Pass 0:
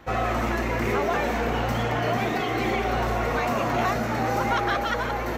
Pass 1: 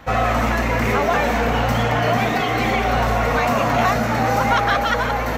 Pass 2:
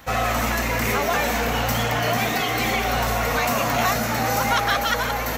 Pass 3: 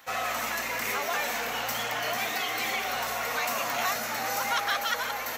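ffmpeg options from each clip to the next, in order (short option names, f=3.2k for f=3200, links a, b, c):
-af "equalizer=f=360:w=6.2:g=-13.5,volume=7dB"
-af "crystalizer=i=3.5:c=0,volume=-5dB"
-af "highpass=f=870:p=1,volume=-5dB"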